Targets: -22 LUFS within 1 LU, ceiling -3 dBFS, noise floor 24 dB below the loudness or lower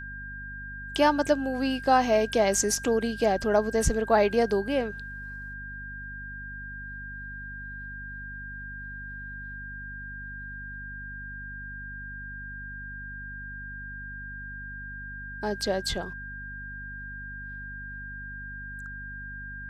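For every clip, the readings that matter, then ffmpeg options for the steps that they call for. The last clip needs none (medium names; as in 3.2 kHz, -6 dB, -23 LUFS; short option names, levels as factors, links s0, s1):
hum 50 Hz; highest harmonic 250 Hz; hum level -40 dBFS; steady tone 1.6 kHz; tone level -38 dBFS; loudness -30.5 LUFS; peak level -9.0 dBFS; loudness target -22.0 LUFS
-> -af "bandreject=f=50:t=h:w=4,bandreject=f=100:t=h:w=4,bandreject=f=150:t=h:w=4,bandreject=f=200:t=h:w=4,bandreject=f=250:t=h:w=4"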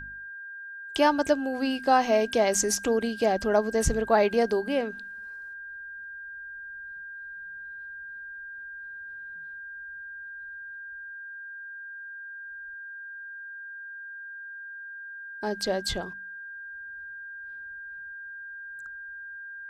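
hum not found; steady tone 1.6 kHz; tone level -38 dBFS
-> -af "bandreject=f=1600:w=30"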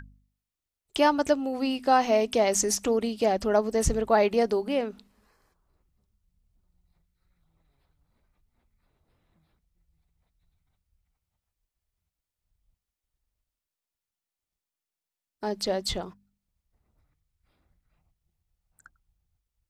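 steady tone not found; loudness -25.5 LUFS; peak level -9.0 dBFS; loudness target -22.0 LUFS
-> -af "volume=1.5"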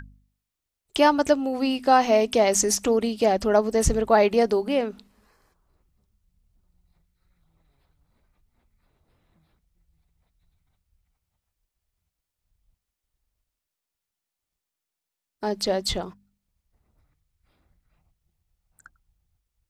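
loudness -22.0 LUFS; peak level -5.5 dBFS; noise floor -86 dBFS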